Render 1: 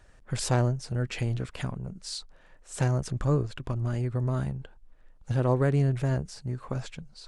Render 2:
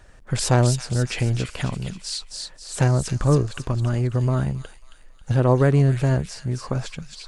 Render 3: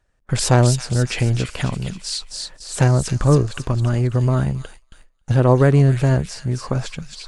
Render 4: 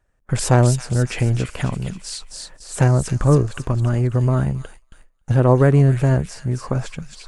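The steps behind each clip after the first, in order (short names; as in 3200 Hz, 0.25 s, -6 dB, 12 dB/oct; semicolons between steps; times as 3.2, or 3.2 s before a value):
thin delay 0.271 s, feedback 44%, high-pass 3000 Hz, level -3 dB; gain +7 dB
gate with hold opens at -34 dBFS; gain +3.5 dB
bell 4200 Hz -7 dB 1.2 oct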